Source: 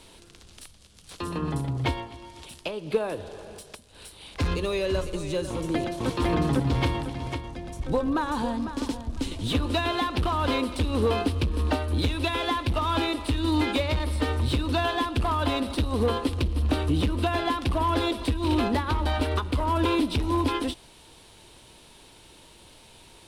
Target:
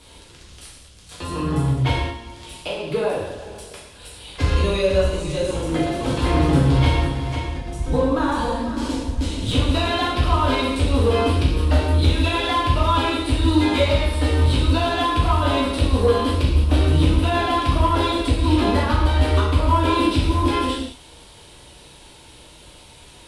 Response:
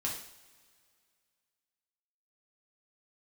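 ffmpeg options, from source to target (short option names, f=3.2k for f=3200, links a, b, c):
-filter_complex "[1:a]atrim=start_sample=2205,afade=t=out:st=0.17:d=0.01,atrim=end_sample=7938,asetrate=23373,aresample=44100[a];[0:a][a]afir=irnorm=-1:irlink=0,volume=-1.5dB"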